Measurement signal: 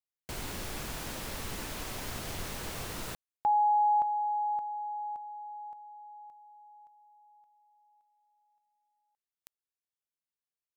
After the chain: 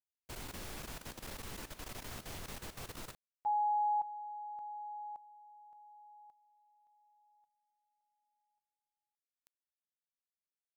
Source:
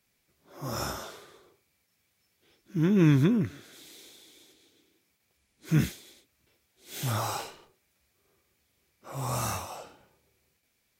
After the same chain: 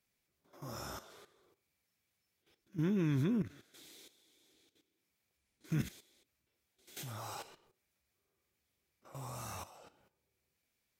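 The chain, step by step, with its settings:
output level in coarse steps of 13 dB
level −5.5 dB

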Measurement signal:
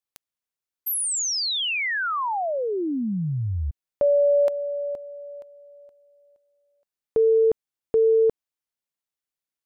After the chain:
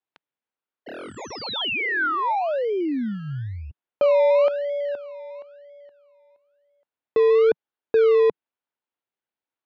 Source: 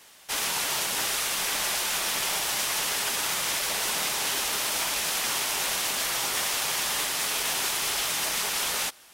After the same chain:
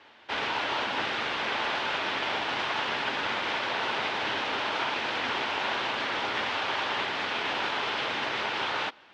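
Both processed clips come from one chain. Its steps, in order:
in parallel at −10.5 dB: sample-and-hold swept by an LFO 23×, swing 60% 1 Hz
on the sum: loudspeaker in its box 140–3,500 Hz, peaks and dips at 170 Hz −9 dB, 910 Hz +4 dB, 1,500 Hz +4 dB

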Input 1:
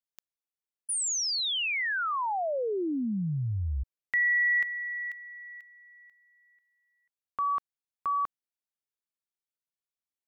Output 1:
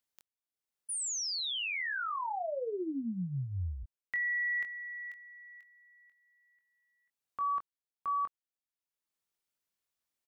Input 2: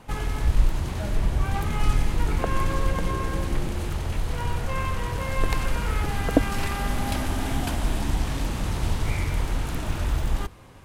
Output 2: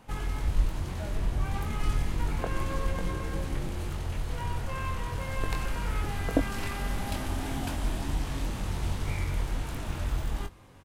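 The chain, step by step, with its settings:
upward compression 1.5 to 1, threshold −57 dBFS
double-tracking delay 22 ms −7 dB
level −6.5 dB

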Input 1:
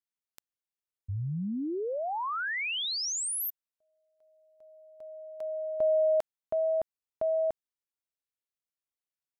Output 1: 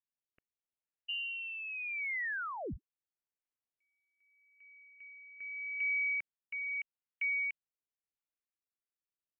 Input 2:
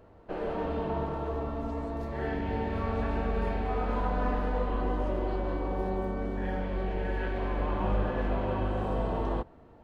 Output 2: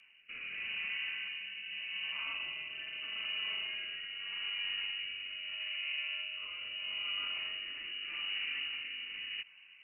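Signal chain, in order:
voice inversion scrambler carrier 2,900 Hz
brickwall limiter −25.5 dBFS
rotating-speaker cabinet horn 0.8 Hz
level −3.5 dB

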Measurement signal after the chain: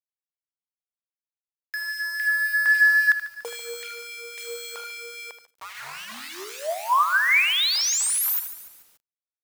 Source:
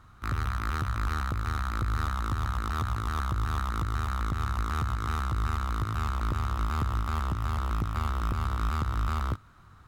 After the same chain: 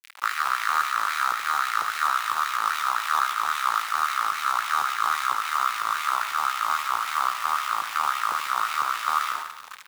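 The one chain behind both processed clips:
high-pass filter 80 Hz 12 dB per octave
hum removal 101.6 Hz, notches 24
in parallel at +0.5 dB: downward compressor 6 to 1, threshold −40 dBFS
on the sum: soft clipping −21 dBFS
bit reduction 7 bits
auto-filter high-pass sine 3.7 Hz 870–2,200 Hz
on a send: repeating echo 78 ms, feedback 24%, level −11 dB
on the sum: feedback echo at a low word length 144 ms, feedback 55%, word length 8 bits, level −13 dB
level +6 dB

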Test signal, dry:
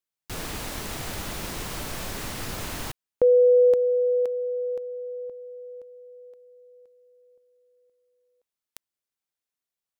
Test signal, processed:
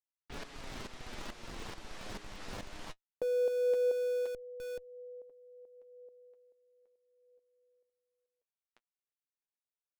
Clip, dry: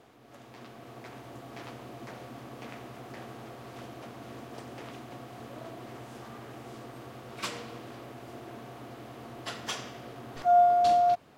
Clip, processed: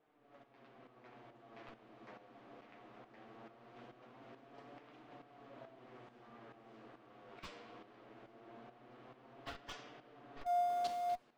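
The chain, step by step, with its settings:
low-pass that shuts in the quiet parts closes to 2,500 Hz, open at −22.5 dBFS
flanger 0.2 Hz, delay 6.5 ms, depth 3.7 ms, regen +38%
shaped tremolo saw up 2.3 Hz, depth 65%
parametric band 89 Hz −14.5 dB 1.4 octaves
in parallel at −6 dB: comparator with hysteresis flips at −36.5 dBFS
on the sum: level −5 dB

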